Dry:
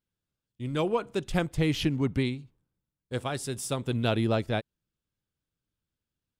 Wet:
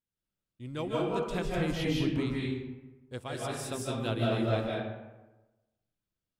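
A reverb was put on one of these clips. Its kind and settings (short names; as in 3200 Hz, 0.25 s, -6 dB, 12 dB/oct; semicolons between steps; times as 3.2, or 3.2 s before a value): digital reverb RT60 1.1 s, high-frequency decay 0.55×, pre-delay 0.12 s, DRR -4.5 dB; gain -8 dB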